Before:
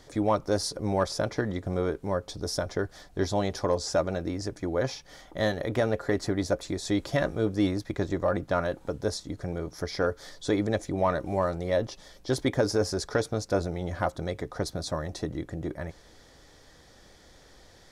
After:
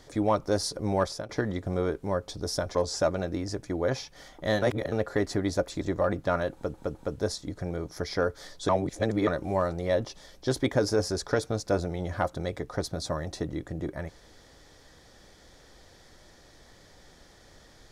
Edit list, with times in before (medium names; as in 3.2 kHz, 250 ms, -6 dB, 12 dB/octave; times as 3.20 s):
1.04–1.29 s: fade out, to -18 dB
2.75–3.68 s: delete
5.55–5.85 s: reverse
6.74–8.05 s: delete
8.77 s: stutter 0.21 s, 3 plays
10.51–11.09 s: reverse